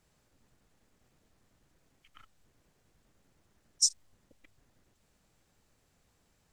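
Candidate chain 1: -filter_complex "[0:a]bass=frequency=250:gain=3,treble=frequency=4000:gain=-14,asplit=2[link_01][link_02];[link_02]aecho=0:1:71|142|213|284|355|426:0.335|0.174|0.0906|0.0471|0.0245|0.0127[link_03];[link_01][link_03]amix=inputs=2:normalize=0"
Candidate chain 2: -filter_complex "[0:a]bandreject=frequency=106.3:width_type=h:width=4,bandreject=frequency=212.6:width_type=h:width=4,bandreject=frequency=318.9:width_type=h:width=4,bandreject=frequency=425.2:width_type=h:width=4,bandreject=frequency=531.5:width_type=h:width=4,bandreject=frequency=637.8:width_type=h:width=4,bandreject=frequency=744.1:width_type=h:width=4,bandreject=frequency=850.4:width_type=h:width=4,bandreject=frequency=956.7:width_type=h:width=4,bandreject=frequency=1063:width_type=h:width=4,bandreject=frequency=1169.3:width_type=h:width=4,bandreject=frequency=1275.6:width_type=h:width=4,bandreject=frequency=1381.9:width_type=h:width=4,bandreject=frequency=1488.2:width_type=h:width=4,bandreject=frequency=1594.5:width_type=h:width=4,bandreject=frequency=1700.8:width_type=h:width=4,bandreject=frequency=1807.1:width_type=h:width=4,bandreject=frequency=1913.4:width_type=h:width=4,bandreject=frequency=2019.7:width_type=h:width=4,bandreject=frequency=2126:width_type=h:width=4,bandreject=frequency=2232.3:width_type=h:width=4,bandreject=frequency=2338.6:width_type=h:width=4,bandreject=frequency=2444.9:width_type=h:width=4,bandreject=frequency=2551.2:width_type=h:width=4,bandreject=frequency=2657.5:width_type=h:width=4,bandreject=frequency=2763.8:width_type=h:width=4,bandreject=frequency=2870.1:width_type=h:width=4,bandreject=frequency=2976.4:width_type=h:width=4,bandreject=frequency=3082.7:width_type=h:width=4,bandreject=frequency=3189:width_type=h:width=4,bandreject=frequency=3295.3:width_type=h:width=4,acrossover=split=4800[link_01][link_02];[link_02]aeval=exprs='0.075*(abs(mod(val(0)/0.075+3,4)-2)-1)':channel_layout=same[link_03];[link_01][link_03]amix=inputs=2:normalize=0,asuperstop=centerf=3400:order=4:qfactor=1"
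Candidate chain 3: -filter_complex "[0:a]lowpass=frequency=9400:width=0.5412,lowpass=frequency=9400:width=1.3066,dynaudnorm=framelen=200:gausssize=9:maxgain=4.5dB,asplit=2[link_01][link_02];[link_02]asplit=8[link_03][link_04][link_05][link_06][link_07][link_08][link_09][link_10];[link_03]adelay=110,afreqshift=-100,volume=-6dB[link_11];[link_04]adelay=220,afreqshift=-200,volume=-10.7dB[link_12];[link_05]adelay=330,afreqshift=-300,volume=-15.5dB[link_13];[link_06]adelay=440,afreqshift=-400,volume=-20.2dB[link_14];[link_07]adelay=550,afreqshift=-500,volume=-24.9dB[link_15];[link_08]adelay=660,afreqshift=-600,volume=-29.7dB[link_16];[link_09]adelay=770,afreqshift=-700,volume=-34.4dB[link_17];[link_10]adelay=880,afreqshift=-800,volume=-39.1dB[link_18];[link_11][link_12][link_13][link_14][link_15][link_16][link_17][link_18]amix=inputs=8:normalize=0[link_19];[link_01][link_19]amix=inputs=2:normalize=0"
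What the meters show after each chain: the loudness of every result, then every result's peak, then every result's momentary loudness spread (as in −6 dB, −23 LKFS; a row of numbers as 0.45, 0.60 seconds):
−40.0, −32.0, −25.5 LKFS; −23.5, −17.0, −7.5 dBFS; 14, 0, 16 LU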